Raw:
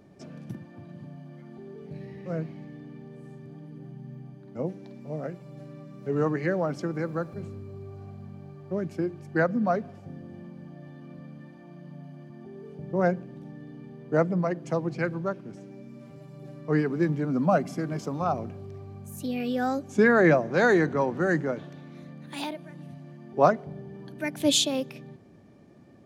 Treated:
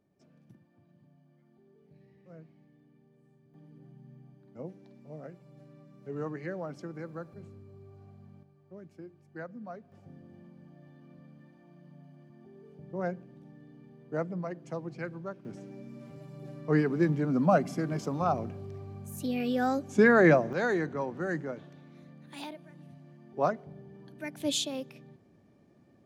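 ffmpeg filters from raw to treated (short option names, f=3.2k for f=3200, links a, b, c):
-af "asetnsamples=n=441:p=0,asendcmd='3.54 volume volume -10.5dB;8.43 volume volume -18dB;9.92 volume volume -9.5dB;15.45 volume volume -1dB;20.53 volume volume -8dB',volume=-19dB"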